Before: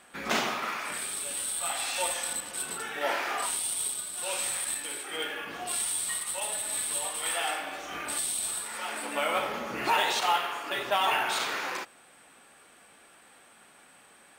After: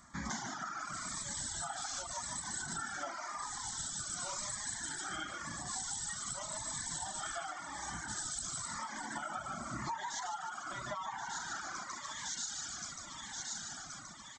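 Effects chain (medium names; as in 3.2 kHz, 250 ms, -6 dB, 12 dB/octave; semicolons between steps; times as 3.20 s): de-hum 95.56 Hz, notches 32; level rider gain up to 9 dB; graphic EQ 250/500/1000/2000/4000 Hz -5/-10/-7/-5/-11 dB; frequency-shifting echo 148 ms, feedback 49%, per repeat +38 Hz, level -3.5 dB; resampled via 16 kHz; static phaser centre 1.1 kHz, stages 4; on a send: feedback echo behind a high-pass 1076 ms, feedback 57%, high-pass 3.5 kHz, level -9 dB; on the sum: compression 10:1, threshold -46 dBFS, peak gain reduction 22 dB; reverb removal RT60 1.2 s; Shepard-style phaser falling 0.92 Hz; trim +12.5 dB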